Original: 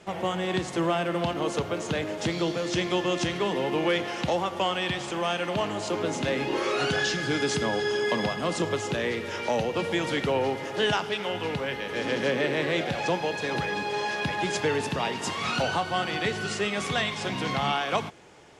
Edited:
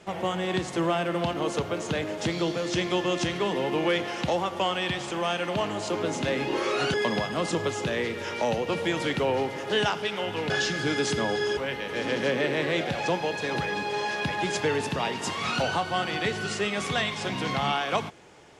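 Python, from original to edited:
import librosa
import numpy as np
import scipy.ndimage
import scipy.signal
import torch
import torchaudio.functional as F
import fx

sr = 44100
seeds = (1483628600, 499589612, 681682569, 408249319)

y = fx.edit(x, sr, fx.move(start_s=6.94, length_s=1.07, to_s=11.57), tone=tone)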